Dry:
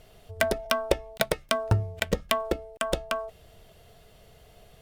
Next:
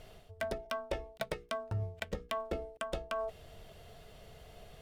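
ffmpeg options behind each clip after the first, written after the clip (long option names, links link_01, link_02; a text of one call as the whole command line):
ffmpeg -i in.wav -af "areverse,acompressor=threshold=-34dB:ratio=10,areverse,highshelf=frequency=7800:gain=-6.5,bandreject=frequency=60:width_type=h:width=6,bandreject=frequency=120:width_type=h:width=6,bandreject=frequency=180:width_type=h:width=6,bandreject=frequency=240:width_type=h:width=6,bandreject=frequency=300:width_type=h:width=6,bandreject=frequency=360:width_type=h:width=6,bandreject=frequency=420:width_type=h:width=6,bandreject=frequency=480:width_type=h:width=6,volume=1dB" out.wav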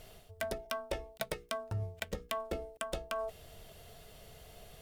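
ffmpeg -i in.wav -af "crystalizer=i=1.5:c=0,volume=-1dB" out.wav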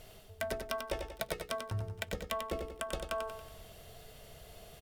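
ffmpeg -i in.wav -af "aecho=1:1:93|186|279|372|465|558:0.501|0.231|0.106|0.0488|0.0224|0.0103" out.wav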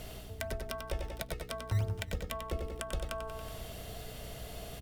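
ffmpeg -i in.wav -filter_complex "[0:a]acrossover=split=130[link_01][link_02];[link_01]acrusher=samples=13:mix=1:aa=0.000001:lfo=1:lforange=20.8:lforate=3[link_03];[link_02]acompressor=threshold=-45dB:ratio=6[link_04];[link_03][link_04]amix=inputs=2:normalize=0,aeval=exprs='val(0)+0.00158*(sin(2*PI*60*n/s)+sin(2*PI*2*60*n/s)/2+sin(2*PI*3*60*n/s)/3+sin(2*PI*4*60*n/s)/4+sin(2*PI*5*60*n/s)/5)':channel_layout=same,volume=7.5dB" out.wav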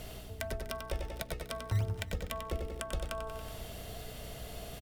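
ffmpeg -i in.wav -af "aecho=1:1:246:0.119" out.wav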